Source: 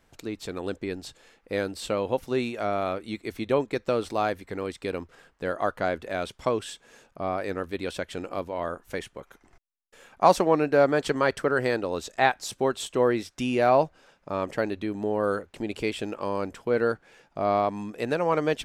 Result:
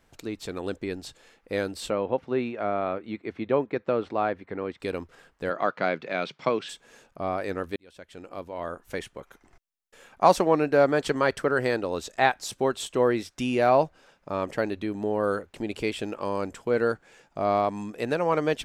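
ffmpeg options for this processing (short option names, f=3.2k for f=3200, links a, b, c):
-filter_complex "[0:a]asettb=1/sr,asplit=3[a][b][c];[a]atrim=end=1.904[d];[b]atrim=start=1.9:end=4.8,asetpts=PTS-STARTPTS,afade=t=in:d=0.004:c=qsin,afade=t=out:st=2.896:d=0.004:c=qsin,highpass=110,lowpass=2.3k[e];[c]atrim=start=4.796[f];[d][e]acrossfade=d=0.004:c1=hsin:c2=qsin[g];[g][f]acrossfade=d=0.004:c1=qsin:c2=hsin,asplit=3[h][i][j];[h]afade=t=out:st=5.49:d=0.02[k];[i]highpass=f=150:w=0.5412,highpass=f=150:w=1.3066,equalizer=f=150:t=q:w=4:g=8,equalizer=f=1.3k:t=q:w=4:g=3,equalizer=f=2.3k:t=q:w=4:g=7,equalizer=f=4.3k:t=q:w=4:g=3,lowpass=f=5.6k:w=0.5412,lowpass=f=5.6k:w=1.3066,afade=t=in:st=5.49:d=0.02,afade=t=out:st=6.68:d=0.02[l];[j]afade=t=in:st=6.68:d=0.02[m];[k][l][m]amix=inputs=3:normalize=0,asettb=1/sr,asplit=3[n][o][p];[n]atrim=end=16.254[q];[o]atrim=start=16.25:end=17.92,asetpts=PTS-STARTPTS,afade=t=in:d=0.004:c=qsin,afade=t=out:st=1.666:d=0.004:c=qsin,equalizer=f=7.4k:t=o:w=0.38:g=6.5[r];[p]atrim=start=17.916[s];[q][r]acrossfade=d=0.004:c1=hsin:c2=qsin[t];[t][s]acrossfade=d=0.004:c1=qsin:c2=hsin,asplit=2[u][v];[u]atrim=end=7.76,asetpts=PTS-STARTPTS,afade=t=out:st=7.756:d=0.004:c=hsin[w];[v]atrim=start=7.76,asetpts=PTS-STARTPTS,afade=t=in:d=1.23[x];[w][x]concat=n=2:v=0:a=1"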